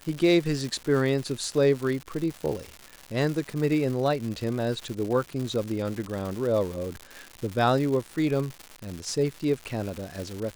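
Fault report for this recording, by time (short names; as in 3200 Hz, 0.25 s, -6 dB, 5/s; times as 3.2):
crackle 250/s -31 dBFS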